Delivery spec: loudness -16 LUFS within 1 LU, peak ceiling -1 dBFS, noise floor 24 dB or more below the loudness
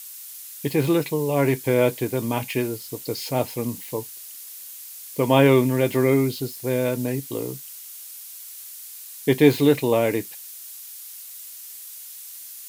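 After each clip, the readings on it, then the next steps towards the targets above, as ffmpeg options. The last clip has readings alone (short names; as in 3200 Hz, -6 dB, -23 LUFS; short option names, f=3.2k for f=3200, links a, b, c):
noise floor -40 dBFS; noise floor target -47 dBFS; loudness -22.5 LUFS; peak -3.5 dBFS; loudness target -16.0 LUFS
-> -af "afftdn=nr=7:nf=-40"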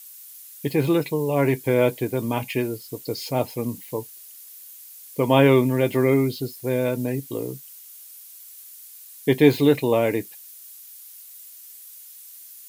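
noise floor -44 dBFS; noise floor target -47 dBFS
-> -af "afftdn=nr=6:nf=-44"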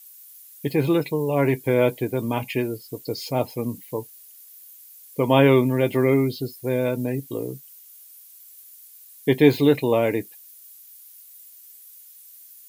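noise floor -48 dBFS; loudness -22.5 LUFS; peak -3.5 dBFS; loudness target -16.0 LUFS
-> -af "volume=6.5dB,alimiter=limit=-1dB:level=0:latency=1"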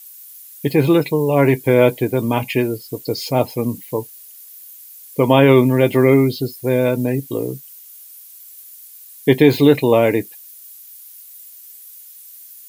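loudness -16.5 LUFS; peak -1.0 dBFS; noise floor -41 dBFS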